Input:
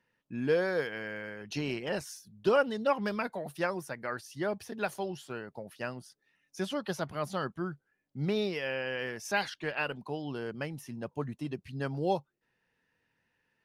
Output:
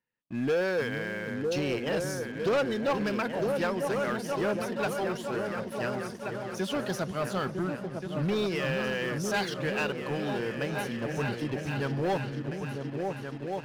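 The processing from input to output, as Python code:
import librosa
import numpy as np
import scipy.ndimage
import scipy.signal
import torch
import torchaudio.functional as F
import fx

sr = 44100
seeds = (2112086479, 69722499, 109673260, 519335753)

y = fx.echo_opening(x, sr, ms=476, hz=200, octaves=2, feedback_pct=70, wet_db=-3)
y = fx.leveller(y, sr, passes=3)
y = F.gain(torch.from_numpy(y), -7.0).numpy()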